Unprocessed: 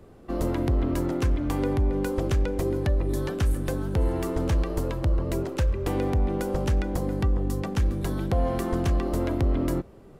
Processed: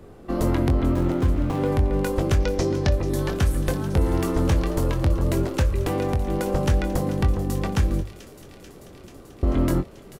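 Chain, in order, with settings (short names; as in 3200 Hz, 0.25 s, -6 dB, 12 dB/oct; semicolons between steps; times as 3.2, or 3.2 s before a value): 0.94–1.68 median filter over 25 samples; 2.4–2.96 synth low-pass 5700 Hz, resonance Q 3.5; 5.71–6.47 compressor, threshold -23 dBFS, peak gain reduction 4.5 dB; 8.01–9.43 room tone; notches 50/100 Hz; doubler 22 ms -8 dB; thin delay 0.438 s, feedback 78%, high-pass 2400 Hz, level -13 dB; gain +4.5 dB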